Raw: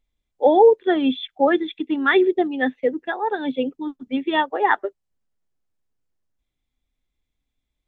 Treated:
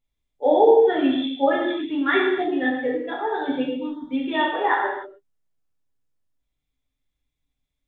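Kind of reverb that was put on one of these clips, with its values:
reverb whose tail is shaped and stops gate 330 ms falling, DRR −5 dB
level −7.5 dB

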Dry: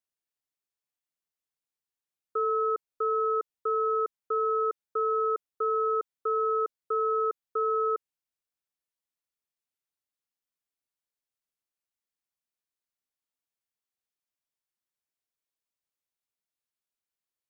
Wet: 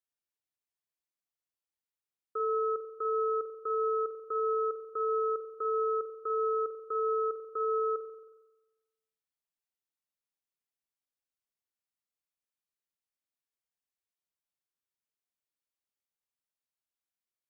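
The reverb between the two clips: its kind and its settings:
spring reverb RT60 1.1 s, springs 45 ms, chirp 70 ms, DRR 6.5 dB
level −5.5 dB

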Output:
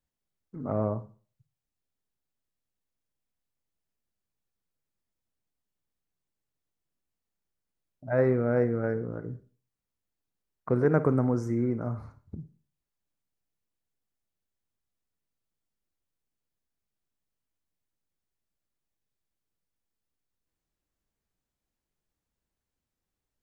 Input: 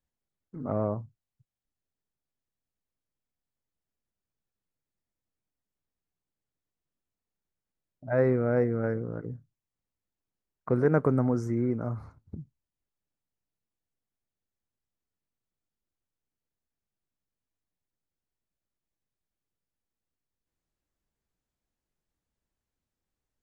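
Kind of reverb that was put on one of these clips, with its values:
four-comb reverb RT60 0.4 s, DRR 13 dB

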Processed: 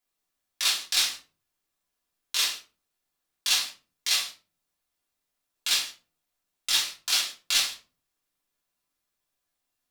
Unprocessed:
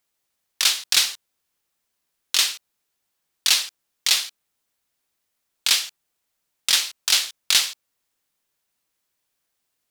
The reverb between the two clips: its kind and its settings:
rectangular room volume 190 cubic metres, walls furnished, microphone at 3.1 metres
level −11 dB

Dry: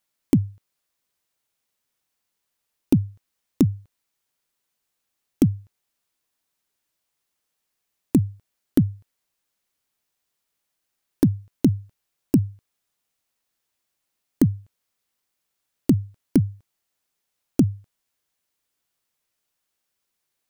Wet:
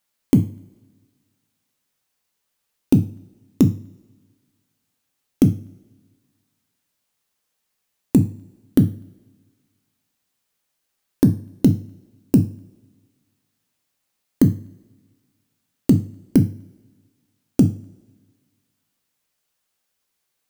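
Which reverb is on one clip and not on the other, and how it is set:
coupled-rooms reverb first 0.36 s, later 1.6 s, from −22 dB, DRR 7 dB
level +2.5 dB

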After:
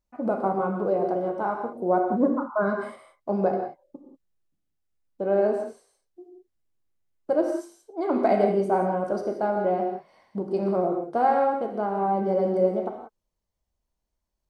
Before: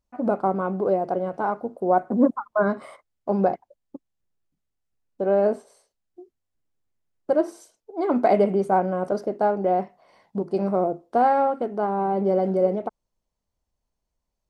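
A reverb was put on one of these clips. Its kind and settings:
reverb whose tail is shaped and stops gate 210 ms flat, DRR 2.5 dB
level −3.5 dB

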